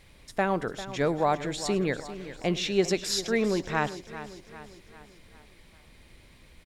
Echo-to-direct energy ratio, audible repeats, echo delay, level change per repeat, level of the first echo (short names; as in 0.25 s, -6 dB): -11.5 dB, 6, 0.105 s, no steady repeat, -20.5 dB